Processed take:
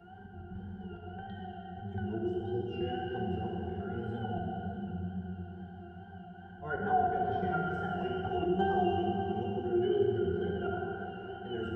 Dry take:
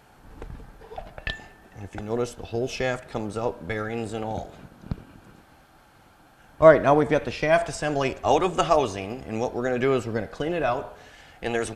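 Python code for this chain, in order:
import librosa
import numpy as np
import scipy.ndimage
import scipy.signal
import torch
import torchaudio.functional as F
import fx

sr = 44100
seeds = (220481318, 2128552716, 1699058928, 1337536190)

p1 = fx.peak_eq(x, sr, hz=210.0, db=3.0, octaves=1.5)
p2 = fx.octave_resonator(p1, sr, note='F#', decay_s=0.41)
p3 = fx.auto_swell(p2, sr, attack_ms=141.0)
p4 = fx.wow_flutter(p3, sr, seeds[0], rate_hz=2.1, depth_cents=100.0)
p5 = p4 + fx.echo_single(p4, sr, ms=594, db=-15.5, dry=0)
p6 = fx.rev_plate(p5, sr, seeds[1], rt60_s=2.8, hf_ratio=0.8, predelay_ms=0, drr_db=-1.5)
p7 = fx.band_squash(p6, sr, depth_pct=40)
y = p7 * 10.0 ** (7.0 / 20.0)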